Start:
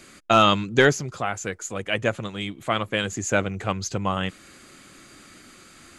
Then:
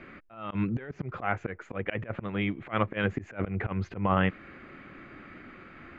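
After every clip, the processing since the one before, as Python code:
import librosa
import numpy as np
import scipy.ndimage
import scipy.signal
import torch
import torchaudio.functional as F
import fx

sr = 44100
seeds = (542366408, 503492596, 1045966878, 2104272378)

y = scipy.signal.sosfilt(scipy.signal.cheby1(3, 1.0, 2200.0, 'lowpass', fs=sr, output='sos'), x)
y = fx.over_compress(y, sr, threshold_db=-25.0, ratio=-0.5)
y = fx.auto_swell(y, sr, attack_ms=126.0)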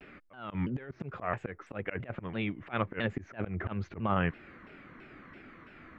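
y = fx.vibrato_shape(x, sr, shape='saw_down', rate_hz=3.0, depth_cents=250.0)
y = F.gain(torch.from_numpy(y), -4.0).numpy()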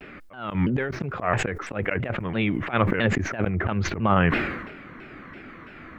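y = fx.sustainer(x, sr, db_per_s=50.0)
y = F.gain(torch.from_numpy(y), 9.0).numpy()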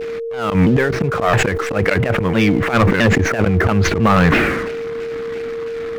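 y = fx.leveller(x, sr, passes=3)
y = y + 10.0 ** (-22.0 / 20.0) * np.sin(2.0 * np.pi * 460.0 * np.arange(len(y)) / sr)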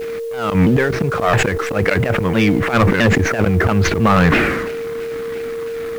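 y = fx.quant_dither(x, sr, seeds[0], bits=8, dither='triangular')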